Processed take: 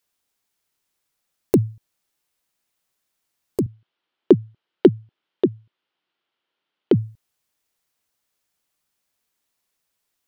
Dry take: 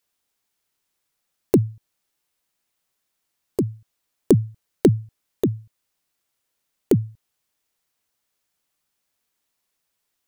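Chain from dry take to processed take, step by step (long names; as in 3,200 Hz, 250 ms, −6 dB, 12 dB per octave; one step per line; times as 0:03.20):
0:03.66–0:06.92: loudspeaker in its box 180–3,900 Hz, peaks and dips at 360 Hz +6 dB, 900 Hz +3 dB, 1,400 Hz +4 dB, 3,100 Hz +6 dB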